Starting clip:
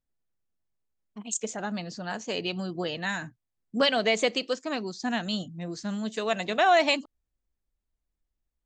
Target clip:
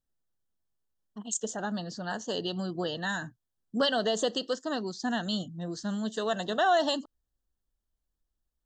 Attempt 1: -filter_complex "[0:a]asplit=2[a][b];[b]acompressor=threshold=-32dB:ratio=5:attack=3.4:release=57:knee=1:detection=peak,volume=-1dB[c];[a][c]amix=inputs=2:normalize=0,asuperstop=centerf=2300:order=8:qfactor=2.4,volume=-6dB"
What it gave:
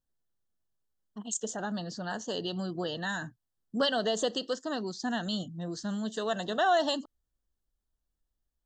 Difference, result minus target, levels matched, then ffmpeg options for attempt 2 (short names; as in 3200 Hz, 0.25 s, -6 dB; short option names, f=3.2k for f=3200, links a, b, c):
compressor: peak gain reduction +5 dB
-filter_complex "[0:a]asplit=2[a][b];[b]acompressor=threshold=-26dB:ratio=5:attack=3.4:release=57:knee=1:detection=peak,volume=-1dB[c];[a][c]amix=inputs=2:normalize=0,asuperstop=centerf=2300:order=8:qfactor=2.4,volume=-6dB"